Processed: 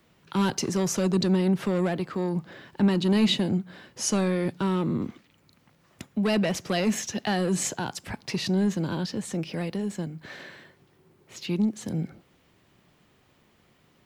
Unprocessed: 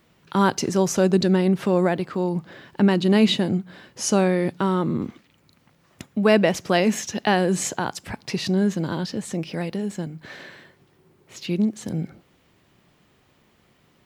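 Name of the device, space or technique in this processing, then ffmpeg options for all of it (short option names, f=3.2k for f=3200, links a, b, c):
one-band saturation: -filter_complex "[0:a]acrossover=split=220|2600[a][b][c];[b]asoftclip=type=tanh:threshold=-22.5dB[d];[a][d][c]amix=inputs=3:normalize=0,volume=-2dB"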